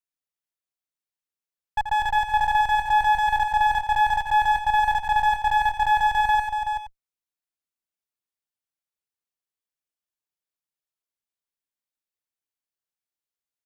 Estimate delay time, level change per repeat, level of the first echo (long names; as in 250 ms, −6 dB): 83 ms, repeats not evenly spaced, −9.0 dB